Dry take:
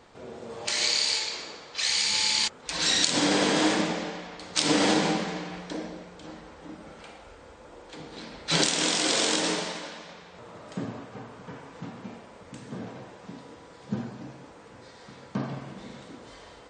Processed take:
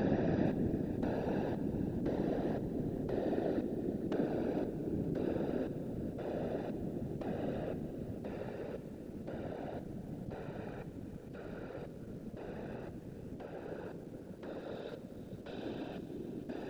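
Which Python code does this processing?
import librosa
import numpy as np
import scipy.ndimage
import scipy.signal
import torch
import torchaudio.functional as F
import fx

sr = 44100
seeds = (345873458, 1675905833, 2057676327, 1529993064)

p1 = fx.wiener(x, sr, points=41)
p2 = scipy.signal.sosfilt(scipy.signal.butter(4, 180.0, 'highpass', fs=sr, output='sos'), p1)
p3 = fx.tilt_shelf(p2, sr, db=-5.0, hz=1300.0)
p4 = fx.rider(p3, sr, range_db=10, speed_s=0.5)
p5 = fx.paulstretch(p4, sr, seeds[0], factor=44.0, window_s=0.05, from_s=5.85)
p6 = fx.filter_lfo_lowpass(p5, sr, shape='square', hz=0.97, low_hz=250.0, high_hz=4000.0, q=1.0)
p7 = fx.whisperise(p6, sr, seeds[1])
p8 = p7 + fx.echo_bbd(p7, sr, ms=71, stages=2048, feedback_pct=50, wet_db=-19.5, dry=0)
p9 = fx.echo_crushed(p8, sr, ms=459, feedback_pct=35, bits=11, wet_db=-12.0)
y = p9 * librosa.db_to_amplitude(9.5)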